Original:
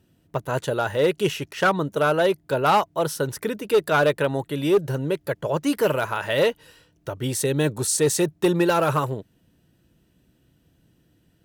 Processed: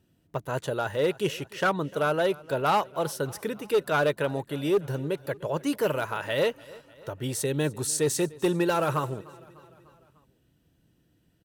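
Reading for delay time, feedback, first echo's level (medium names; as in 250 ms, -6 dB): 299 ms, 59%, -22.0 dB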